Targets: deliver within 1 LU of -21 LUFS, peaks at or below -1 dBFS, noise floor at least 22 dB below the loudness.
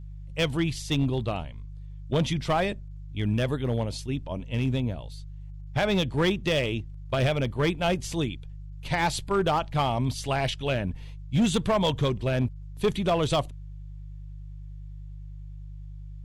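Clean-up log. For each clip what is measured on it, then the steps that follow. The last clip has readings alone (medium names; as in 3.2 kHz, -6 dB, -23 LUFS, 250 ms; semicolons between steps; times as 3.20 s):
clipped samples 0.9%; clipping level -17.5 dBFS; hum 50 Hz; highest harmonic 150 Hz; hum level -37 dBFS; loudness -27.5 LUFS; peak level -17.5 dBFS; loudness target -21.0 LUFS
-> clip repair -17.5 dBFS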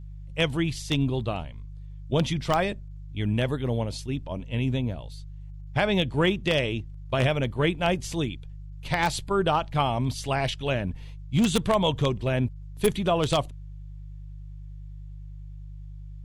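clipped samples 0.0%; hum 50 Hz; highest harmonic 150 Hz; hum level -37 dBFS
-> de-hum 50 Hz, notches 3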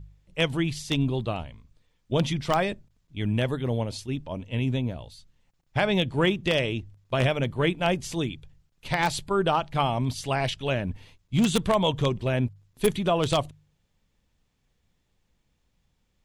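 hum not found; loudness -26.5 LUFS; peak level -8.0 dBFS; loudness target -21.0 LUFS
-> trim +5.5 dB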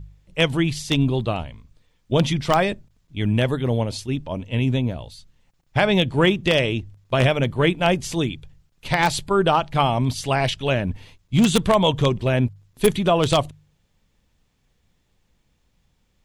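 loudness -21.5 LUFS; peak level -2.5 dBFS; noise floor -67 dBFS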